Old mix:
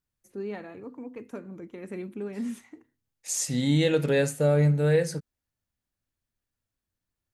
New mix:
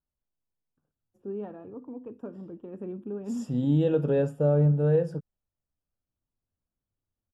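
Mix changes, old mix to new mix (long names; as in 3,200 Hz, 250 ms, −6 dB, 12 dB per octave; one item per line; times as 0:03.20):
first voice: entry +0.90 s
master: add moving average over 21 samples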